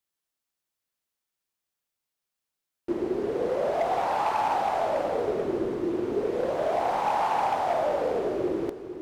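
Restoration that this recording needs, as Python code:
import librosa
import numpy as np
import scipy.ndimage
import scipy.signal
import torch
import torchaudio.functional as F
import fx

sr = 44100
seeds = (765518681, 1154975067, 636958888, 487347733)

y = fx.fix_declip(x, sr, threshold_db=-19.5)
y = fx.fix_echo_inverse(y, sr, delay_ms=455, level_db=-10.0)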